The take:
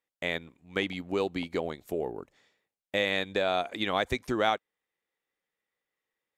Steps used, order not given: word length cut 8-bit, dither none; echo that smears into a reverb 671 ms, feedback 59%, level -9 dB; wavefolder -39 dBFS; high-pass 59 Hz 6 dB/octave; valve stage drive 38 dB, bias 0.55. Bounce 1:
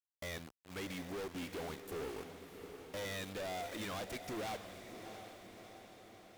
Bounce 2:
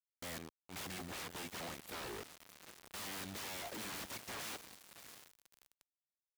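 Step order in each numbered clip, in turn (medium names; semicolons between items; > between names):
word length cut > valve stage > high-pass > wavefolder > echo that smears into a reverb; wavefolder > echo that smears into a reverb > valve stage > word length cut > high-pass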